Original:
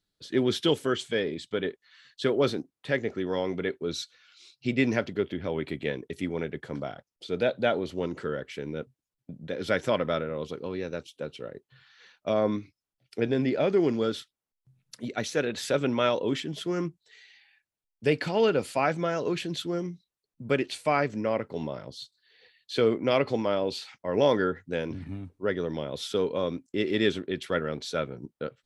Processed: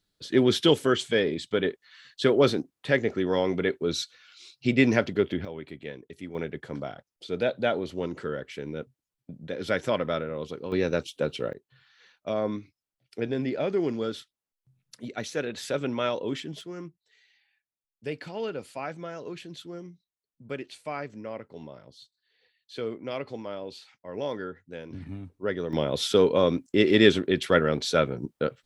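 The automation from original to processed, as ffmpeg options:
-af "asetnsamples=n=441:p=0,asendcmd='5.45 volume volume -8dB;6.35 volume volume -0.5dB;10.72 volume volume 8dB;11.53 volume volume -3dB;16.61 volume volume -9.5dB;24.93 volume volume -1dB;25.73 volume volume 7dB',volume=1.58"

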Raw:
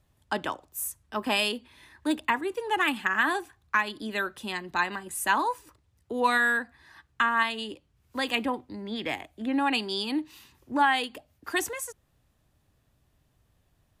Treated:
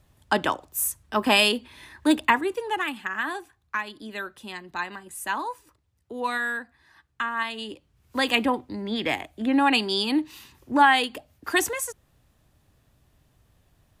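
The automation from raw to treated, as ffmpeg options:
-af "volume=6.68,afade=t=out:st=2.22:d=0.65:silence=0.281838,afade=t=in:st=7.36:d=0.85:silence=0.334965"

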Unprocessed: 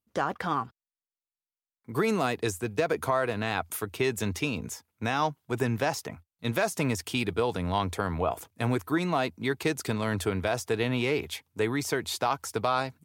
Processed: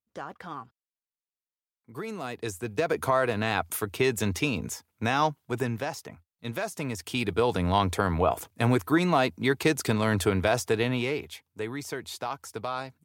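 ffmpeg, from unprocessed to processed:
-af "volume=3.76,afade=t=in:st=2.17:d=1:silence=0.237137,afade=t=out:st=5.26:d=0.61:silence=0.421697,afade=t=in:st=6.91:d=0.66:silence=0.354813,afade=t=out:st=10.57:d=0.73:silence=0.316228"

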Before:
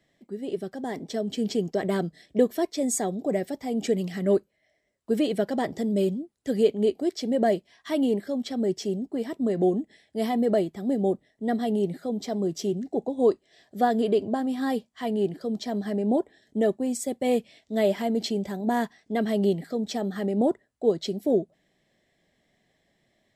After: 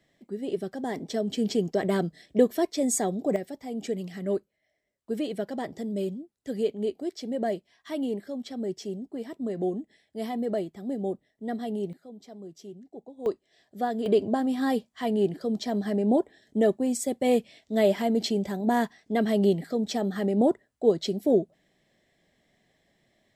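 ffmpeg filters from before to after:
-af "asetnsamples=n=441:p=0,asendcmd='3.36 volume volume -6dB;11.93 volume volume -16dB;13.26 volume volume -6dB;14.06 volume volume 1dB',volume=1.06"

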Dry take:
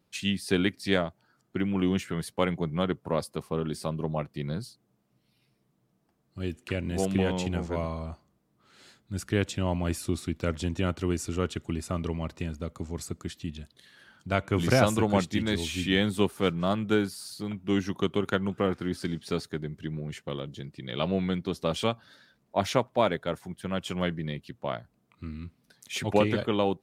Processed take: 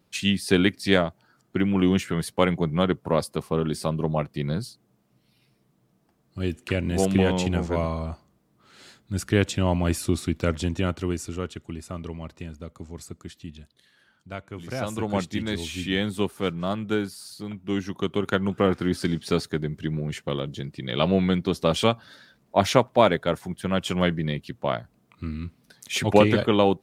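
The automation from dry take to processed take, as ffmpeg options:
-af "volume=17.8,afade=t=out:st=10.35:d=1.18:silence=0.354813,afade=t=out:st=13.6:d=1.07:silence=0.334965,afade=t=in:st=14.67:d=0.54:silence=0.237137,afade=t=in:st=17.95:d=0.85:silence=0.446684"

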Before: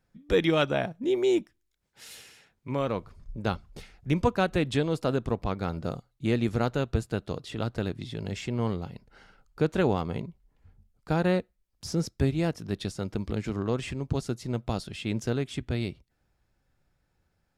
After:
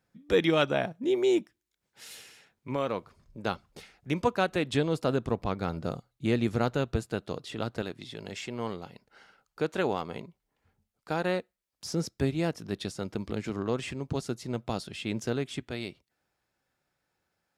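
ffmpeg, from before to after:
-af "asetnsamples=n=441:p=0,asendcmd='2.76 highpass f 290;4.72 highpass f 90;6.97 highpass f 190;7.82 highpass f 460;11.94 highpass f 180;15.6 highpass f 450',highpass=f=140:p=1"

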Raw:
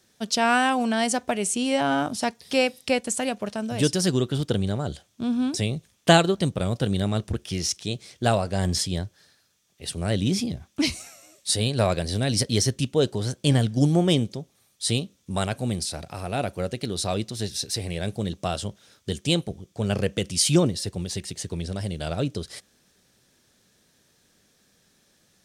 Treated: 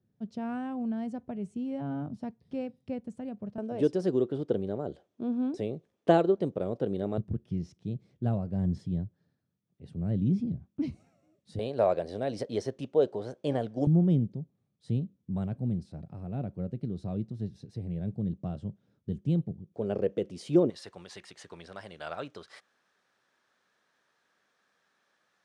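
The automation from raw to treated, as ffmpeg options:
-af "asetnsamples=n=441:p=0,asendcmd='3.58 bandpass f 420;7.18 bandpass f 160;11.59 bandpass f 580;13.87 bandpass f 160;19.74 bandpass f 410;20.7 bandpass f 1200',bandpass=f=130:t=q:w=1.5:csg=0"

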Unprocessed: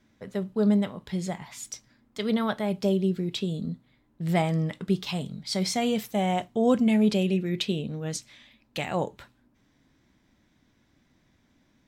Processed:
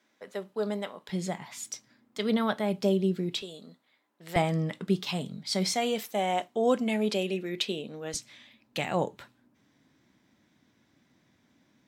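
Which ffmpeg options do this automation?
-af "asetnsamples=n=441:p=0,asendcmd='1.09 highpass f 170;3.42 highpass f 600;4.36 highpass f 160;5.74 highpass f 340;8.14 highpass f 120',highpass=450"

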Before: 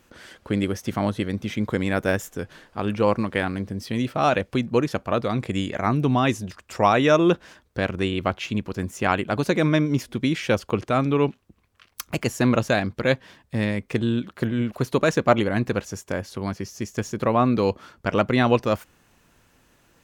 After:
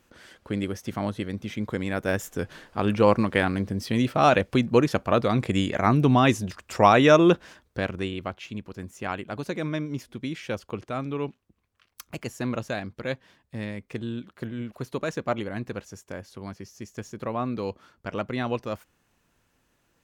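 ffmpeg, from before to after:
-af "volume=1.19,afade=t=in:st=2.03:d=0.4:silence=0.473151,afade=t=out:st=7.09:d=1.22:silence=0.281838"

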